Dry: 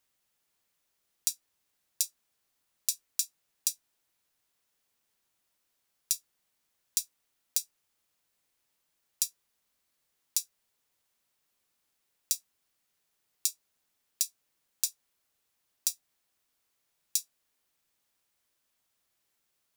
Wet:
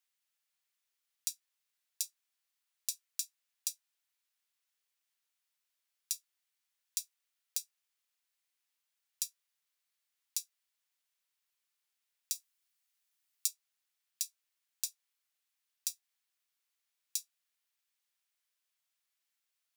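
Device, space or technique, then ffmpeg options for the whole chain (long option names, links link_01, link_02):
filter by subtraction: -filter_complex "[0:a]asettb=1/sr,asplit=3[link_01][link_02][link_03];[link_01]atrim=end=12.354[link_04];[link_02]atrim=start=12.35:end=13.48,asetpts=PTS-STARTPTS,afade=type=in:duration=0.004:curve=qsin,afade=type=out:start_time=1.126:duration=0.004:curve=qsin,highshelf=frequency=5700:gain=5[link_05];[link_03]atrim=start=13.476[link_06];[link_04][link_05]acrossfade=duration=0.004:curve1=hsin:curve2=qsin[link_07];[link_07][link_06]acrossfade=duration=0.004:curve1=qsin:curve2=hsin,asplit=2[link_08][link_09];[link_09]lowpass=2300,volume=-1[link_10];[link_08][link_10]amix=inputs=2:normalize=0,volume=-7.5dB"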